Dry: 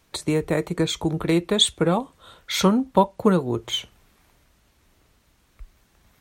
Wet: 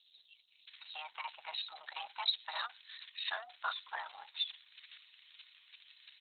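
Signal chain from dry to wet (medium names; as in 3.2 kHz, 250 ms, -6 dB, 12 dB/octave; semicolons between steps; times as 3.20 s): zero-crossing glitches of -21 dBFS; band-pass filter 6.5 kHz, Q 0.54; frequency shift +460 Hz; bands offset in time highs, lows 670 ms, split 4.4 kHz; trim -4 dB; Opus 6 kbps 48 kHz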